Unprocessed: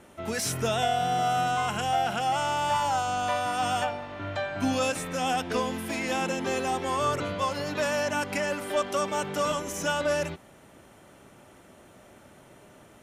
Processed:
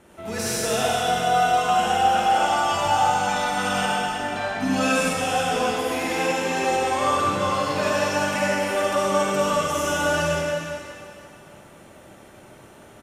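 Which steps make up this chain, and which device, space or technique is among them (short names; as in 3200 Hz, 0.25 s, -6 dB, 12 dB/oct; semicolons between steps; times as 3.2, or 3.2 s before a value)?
cave (echo 0.351 s -13.5 dB; reverb RT60 2.6 s, pre-delay 45 ms, DRR -6.5 dB); 3.27–5.13 comb 4.6 ms, depth 65%; gain -1.5 dB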